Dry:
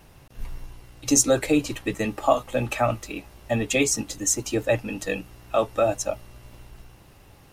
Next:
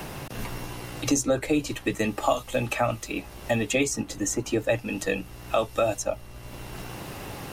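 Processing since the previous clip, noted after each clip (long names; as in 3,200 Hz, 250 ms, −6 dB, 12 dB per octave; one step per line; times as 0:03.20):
multiband upward and downward compressor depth 70%
level −1.5 dB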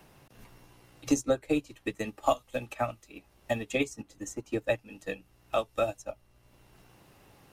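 expander for the loud parts 2.5 to 1, over −32 dBFS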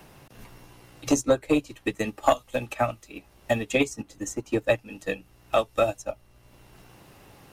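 saturating transformer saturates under 450 Hz
level +6.5 dB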